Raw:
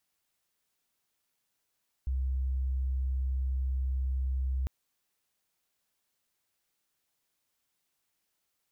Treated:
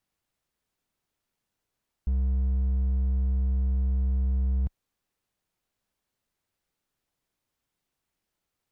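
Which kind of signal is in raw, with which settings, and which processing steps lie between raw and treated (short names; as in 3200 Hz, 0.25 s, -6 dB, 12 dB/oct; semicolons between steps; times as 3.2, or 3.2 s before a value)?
tone sine 65.3 Hz -27.5 dBFS 2.60 s
tilt -2 dB/oct; hard clip -23 dBFS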